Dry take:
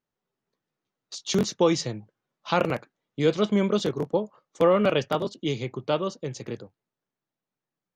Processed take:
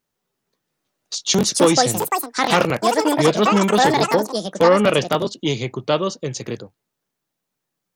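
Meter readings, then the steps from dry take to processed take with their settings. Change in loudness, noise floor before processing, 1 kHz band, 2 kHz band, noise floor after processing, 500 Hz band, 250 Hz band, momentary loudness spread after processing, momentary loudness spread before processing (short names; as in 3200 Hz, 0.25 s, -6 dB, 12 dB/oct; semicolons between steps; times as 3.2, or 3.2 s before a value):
+7.5 dB, under -85 dBFS, +12.0 dB, +11.5 dB, -80 dBFS, +6.5 dB, +6.5 dB, 11 LU, 16 LU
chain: high shelf 3800 Hz +7.5 dB; echoes that change speed 0.702 s, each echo +7 st, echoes 2; core saturation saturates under 700 Hz; gain +6.5 dB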